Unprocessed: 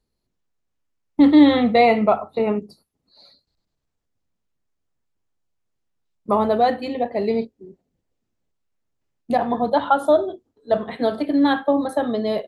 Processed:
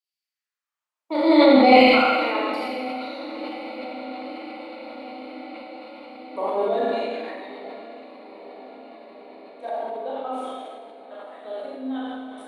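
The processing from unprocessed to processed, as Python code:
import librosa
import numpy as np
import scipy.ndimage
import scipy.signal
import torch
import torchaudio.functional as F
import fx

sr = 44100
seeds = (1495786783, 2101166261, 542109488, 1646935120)

y = fx.doppler_pass(x, sr, speed_mps=26, closest_m=17.0, pass_at_s=2.55)
y = scipy.signal.sosfilt(scipy.signal.butter(4, 120.0, 'highpass', fs=sr, output='sos'), y)
y = fx.filter_lfo_highpass(y, sr, shape='saw_down', hz=0.58, low_hz=270.0, high_hz=2900.0, q=2.0)
y = fx.echo_diffused(y, sr, ms=985, feedback_pct=72, wet_db=-15.5)
y = fx.rev_schroeder(y, sr, rt60_s=1.4, comb_ms=27, drr_db=-6.0)
y = fx.sustainer(y, sr, db_per_s=26.0)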